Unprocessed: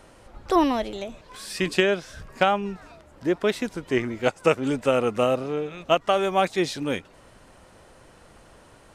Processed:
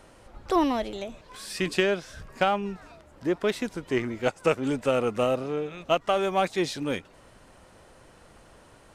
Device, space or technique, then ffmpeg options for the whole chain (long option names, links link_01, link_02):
parallel distortion: -filter_complex "[0:a]asplit=2[link_01][link_02];[link_02]asoftclip=type=hard:threshold=-22dB,volume=-9dB[link_03];[link_01][link_03]amix=inputs=2:normalize=0,volume=-4.5dB"